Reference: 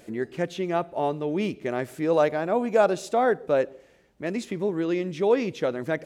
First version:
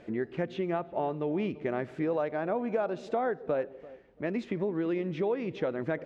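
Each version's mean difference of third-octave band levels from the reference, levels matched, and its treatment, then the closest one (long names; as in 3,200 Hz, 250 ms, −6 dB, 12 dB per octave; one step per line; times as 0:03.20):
4.5 dB: low-pass filter 2,600 Hz 12 dB per octave
downward compressor 6 to 1, threshold −27 dBFS, peak gain reduction 12 dB
on a send: feedback echo with a low-pass in the loop 340 ms, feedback 26%, low-pass 1,100 Hz, level −18 dB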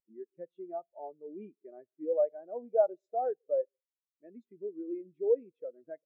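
16.0 dB: low-shelf EQ 190 Hz −10.5 dB
in parallel at −0.5 dB: downward compressor, threshold −31 dBFS, peak gain reduction 14.5 dB
on the sum: every bin expanded away from the loudest bin 2.5 to 1
level −7 dB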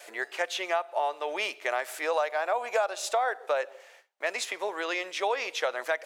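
11.5 dB: noise gate with hold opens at −48 dBFS
high-pass filter 670 Hz 24 dB per octave
downward compressor 6 to 1, threshold −33 dBFS, peak gain reduction 14 dB
level +8.5 dB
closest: first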